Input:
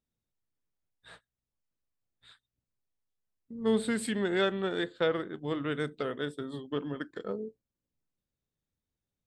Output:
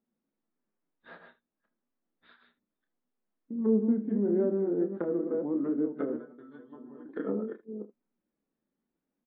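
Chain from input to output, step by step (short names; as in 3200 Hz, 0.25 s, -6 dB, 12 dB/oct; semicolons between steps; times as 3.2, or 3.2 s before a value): reverse delay 0.237 s, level -6 dB; treble ducked by the level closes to 460 Hz, closed at -28 dBFS; LPF 1600 Hz 12 dB/oct; resonant low shelf 160 Hz -13.5 dB, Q 3; in parallel at +3 dB: compressor 6:1, threshold -41 dBFS, peak gain reduction 20.5 dB; 6.16–7.06 on the sum: metallic resonator 120 Hz, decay 0.26 s, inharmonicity 0.002; flange 1.6 Hz, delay 4.9 ms, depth 1.6 ms, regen -53%; on a send: early reflections 29 ms -8.5 dB, 77 ms -16.5 dB; on the sum: gain +1.5 dB; MP3 32 kbps 16000 Hz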